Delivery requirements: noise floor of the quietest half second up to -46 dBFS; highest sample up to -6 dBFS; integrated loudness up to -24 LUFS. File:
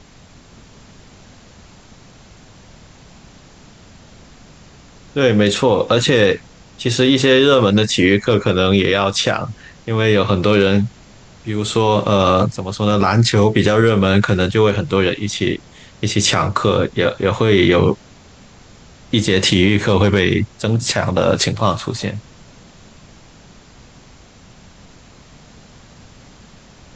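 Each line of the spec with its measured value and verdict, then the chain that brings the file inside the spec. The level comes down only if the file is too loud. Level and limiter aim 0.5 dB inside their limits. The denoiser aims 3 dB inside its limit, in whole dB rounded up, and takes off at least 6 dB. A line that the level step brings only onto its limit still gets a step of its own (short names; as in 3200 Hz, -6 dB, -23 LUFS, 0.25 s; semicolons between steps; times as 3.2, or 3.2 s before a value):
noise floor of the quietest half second -44 dBFS: fail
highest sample -2.5 dBFS: fail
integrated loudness -15.5 LUFS: fail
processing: gain -9 dB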